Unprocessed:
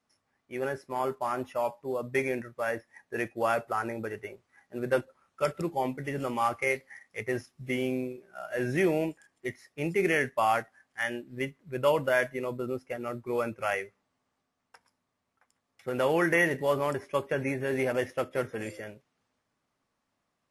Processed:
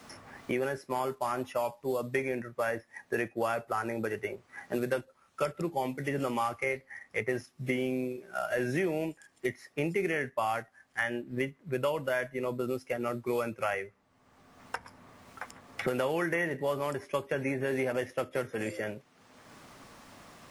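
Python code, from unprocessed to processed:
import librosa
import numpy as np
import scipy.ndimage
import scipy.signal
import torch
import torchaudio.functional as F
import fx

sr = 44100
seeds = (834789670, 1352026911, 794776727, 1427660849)

y = fx.band_squash(x, sr, depth_pct=100)
y = F.gain(torch.from_numpy(y), -2.5).numpy()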